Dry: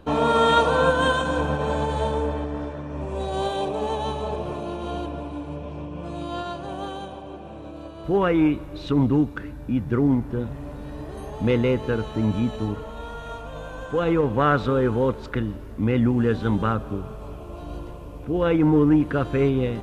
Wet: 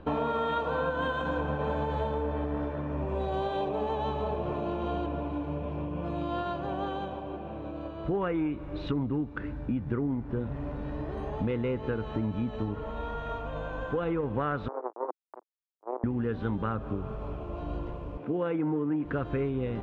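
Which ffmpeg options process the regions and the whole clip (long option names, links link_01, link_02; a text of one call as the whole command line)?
ffmpeg -i in.wav -filter_complex "[0:a]asettb=1/sr,asplit=3[link_01][link_02][link_03];[link_01]atrim=end=14.684[link_04];[link_02]atrim=start=14.68:end=16.04,asetpts=PTS-STARTPTS,afade=type=in:duration=0.004:curve=qsin,afade=type=out:start_time=1.356:duration=0.004:curve=qsin,aemphasis=mode=production:type=bsi,acrusher=bits=2:mix=0:aa=0.5,asuperpass=centerf=580:order=8:qfactor=0.8[link_05];[link_03]atrim=start=16.036[link_06];[link_04][link_05]acrossfade=duration=0.004:curve1=hsin:curve2=qsin[link_07];[link_07][link_06]acrossfade=duration=0.004:curve1=qsin:curve2=hsin,asettb=1/sr,asplit=3[link_08][link_09][link_10];[link_08]atrim=end=18.174[link_11];[link_09]atrim=start=18.17:end=19.05,asetpts=PTS-STARTPTS,afade=type=in:duration=0.004:curve=qsin,afade=type=out:start_time=0.876:duration=0.004:curve=qsin,highpass=frequency=140:width=0.5412,highpass=frequency=140:width=1.3066,bass=frequency=250:gain=-1,treble=frequency=4000:gain=-6[link_12];[link_10]atrim=start=19.046[link_13];[link_11][link_12]acrossfade=duration=0.004:curve1=hsin:curve2=qsin[link_14];[link_14][link_13]acrossfade=duration=0.004:curve1=qsin:curve2=hsin,lowpass=2700,acompressor=threshold=-27dB:ratio=6" out.wav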